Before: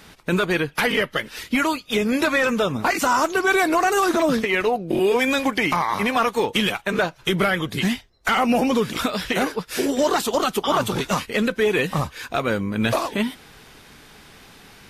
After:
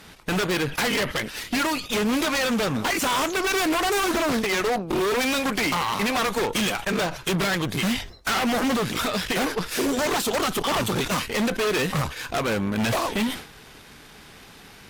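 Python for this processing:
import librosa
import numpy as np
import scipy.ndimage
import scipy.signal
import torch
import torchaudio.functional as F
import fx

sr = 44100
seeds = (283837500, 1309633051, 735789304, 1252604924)

y = 10.0 ** (-18.0 / 20.0) * (np.abs((x / 10.0 ** (-18.0 / 20.0) + 3.0) % 4.0 - 2.0) - 1.0)
y = fx.cheby_harmonics(y, sr, harmonics=(6,), levels_db=(-17,), full_scale_db=-18.0)
y = fx.sustainer(y, sr, db_per_s=110.0)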